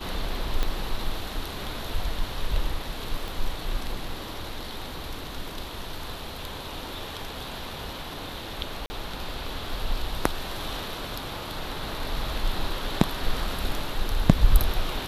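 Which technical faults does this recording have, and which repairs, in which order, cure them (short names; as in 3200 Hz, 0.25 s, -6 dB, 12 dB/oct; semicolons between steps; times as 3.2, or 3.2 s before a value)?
0.63 pop -12 dBFS
3.28 pop
8.86–8.9 gap 40 ms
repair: de-click; interpolate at 8.86, 40 ms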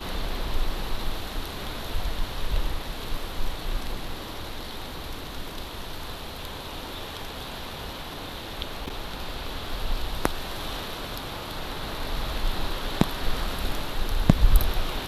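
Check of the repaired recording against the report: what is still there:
0.63 pop
3.28 pop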